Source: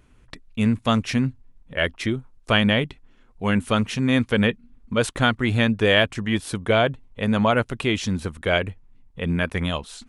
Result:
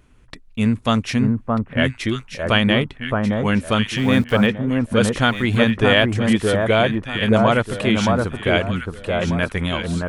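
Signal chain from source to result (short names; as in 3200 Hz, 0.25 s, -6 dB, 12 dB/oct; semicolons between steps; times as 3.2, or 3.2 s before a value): 3.97–4.47 sample gate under -36.5 dBFS; echo with dull and thin repeats by turns 0.62 s, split 1400 Hz, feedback 53%, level -2 dB; gain +2 dB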